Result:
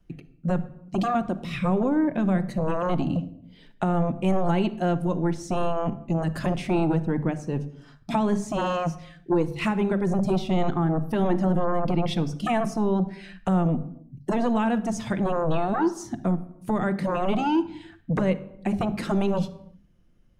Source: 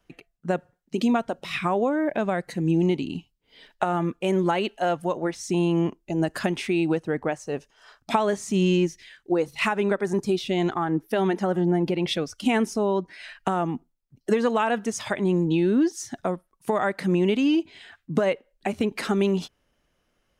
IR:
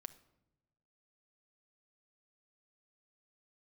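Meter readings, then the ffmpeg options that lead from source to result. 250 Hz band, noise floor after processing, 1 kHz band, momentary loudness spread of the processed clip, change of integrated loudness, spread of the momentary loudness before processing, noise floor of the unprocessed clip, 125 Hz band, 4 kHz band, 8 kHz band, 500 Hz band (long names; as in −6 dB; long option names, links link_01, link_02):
0.0 dB, −55 dBFS, 0.0 dB, 7 LU, −0.5 dB, 8 LU, −72 dBFS, +3.0 dB, −5.5 dB, −5.5 dB, −2.5 dB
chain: -filter_complex "[0:a]bandreject=frequency=50:width_type=h:width=6,bandreject=frequency=100:width_type=h:width=6,bandreject=frequency=150:width_type=h:width=6,bandreject=frequency=200:width_type=h:width=6,acrossover=split=260[link_01][link_02];[link_01]aeval=exprs='0.15*sin(PI/2*5.62*val(0)/0.15)':channel_layout=same[link_03];[link_03][link_02]amix=inputs=2:normalize=0[link_04];[1:a]atrim=start_sample=2205,afade=type=out:start_time=0.43:duration=0.01,atrim=end_sample=19404[link_05];[link_04][link_05]afir=irnorm=-1:irlink=0"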